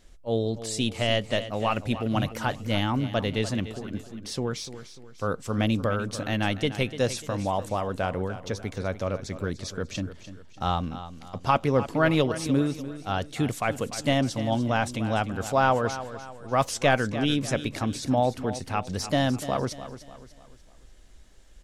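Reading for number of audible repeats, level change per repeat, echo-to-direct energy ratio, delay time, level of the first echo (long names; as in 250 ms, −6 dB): 3, −8.0 dB, −12.0 dB, 296 ms, −13.0 dB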